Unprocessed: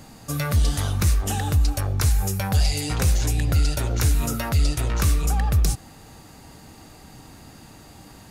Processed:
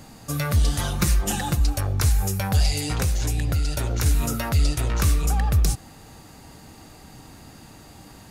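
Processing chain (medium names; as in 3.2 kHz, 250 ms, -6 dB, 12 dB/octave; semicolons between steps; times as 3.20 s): 0.79–1.60 s: comb 5.7 ms, depth 82%; 2.85–4.06 s: compression, threshold -19 dBFS, peak gain reduction 4.5 dB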